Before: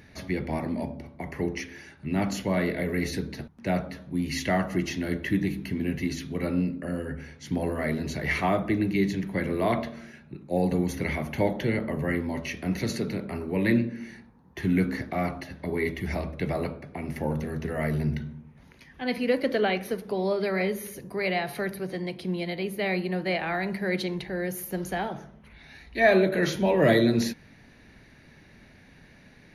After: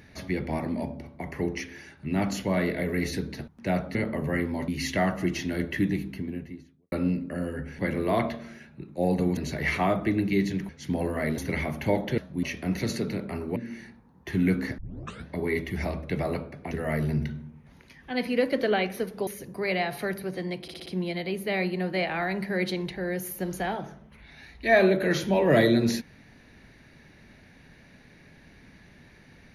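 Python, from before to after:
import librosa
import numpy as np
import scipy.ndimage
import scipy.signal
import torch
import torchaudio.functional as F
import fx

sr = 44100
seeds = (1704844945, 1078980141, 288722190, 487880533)

y = fx.studio_fade_out(x, sr, start_s=5.29, length_s=1.15)
y = fx.edit(y, sr, fx.swap(start_s=3.95, length_s=0.25, other_s=11.7, other_length_s=0.73),
    fx.swap(start_s=7.31, length_s=0.69, other_s=9.32, other_length_s=1.58),
    fx.cut(start_s=13.56, length_s=0.3),
    fx.tape_start(start_s=15.08, length_s=0.5),
    fx.cut(start_s=17.01, length_s=0.61),
    fx.cut(start_s=20.18, length_s=0.65),
    fx.stutter(start_s=22.18, slice_s=0.06, count=5), tone=tone)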